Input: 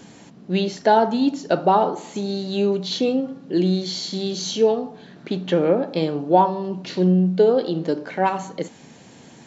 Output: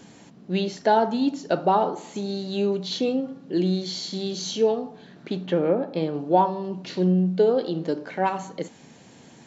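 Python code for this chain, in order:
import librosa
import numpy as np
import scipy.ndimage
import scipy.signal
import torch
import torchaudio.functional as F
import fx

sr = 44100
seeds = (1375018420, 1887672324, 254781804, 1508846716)

y = fx.high_shelf(x, sr, hz=fx.line((5.45, 4300.0), (6.13, 3200.0)), db=-9.5, at=(5.45, 6.13), fade=0.02)
y = y * 10.0 ** (-3.5 / 20.0)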